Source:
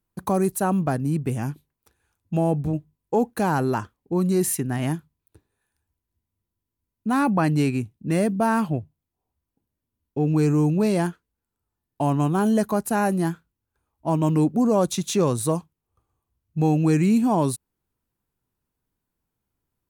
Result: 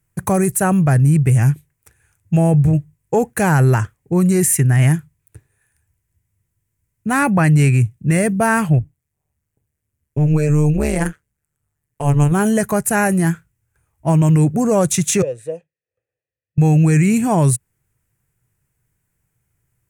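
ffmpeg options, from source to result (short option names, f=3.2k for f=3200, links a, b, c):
-filter_complex "[0:a]asettb=1/sr,asplit=3[a][b][c];[a]atrim=end=8.784[d];[b]atrim=start=8.78:end=12.32,asetpts=PTS-STARTPTS,afade=t=in:d=0.004:c=qsin,afade=t=out:st=3.536:d=0.004:c=qsin,tremolo=f=150:d=0.974[e];[c]atrim=start=12.316[f];[d][e]acrossfade=d=0.004:c1=hsin:c2=qsin[g];[g][f]acrossfade=d=0.004:c1=qsin:c2=hsin,asettb=1/sr,asplit=3[h][i][j];[h]atrim=end=15.224[k];[i]atrim=start=15.22:end=16.58,asetpts=PTS-STARTPTS,afade=t=in:d=0.004:c=qsin,afade=t=out:st=1.356:d=0.004:c=qsin,asplit=3[l][m][n];[l]bandpass=f=530:t=q:w=8,volume=0dB[o];[m]bandpass=f=1.84k:t=q:w=8,volume=-6dB[p];[n]bandpass=f=2.48k:t=q:w=8,volume=-9dB[q];[o][p][q]amix=inputs=3:normalize=0[r];[j]atrim=start=16.576[s];[k][r]acrossfade=d=0.004:c1=hsin:c2=qsin[t];[t][s]acrossfade=d=0.004:c1=qsin:c2=hsin,equalizer=f=125:t=o:w=1:g=11,equalizer=f=250:t=o:w=1:g=-9,equalizer=f=1k:t=o:w=1:g=-6,equalizer=f=2k:t=o:w=1:g=9,equalizer=f=4k:t=o:w=1:g=-10,equalizer=f=8k:t=o:w=1:g=9,alimiter=limit=-15.5dB:level=0:latency=1:release=20,volume=8.5dB"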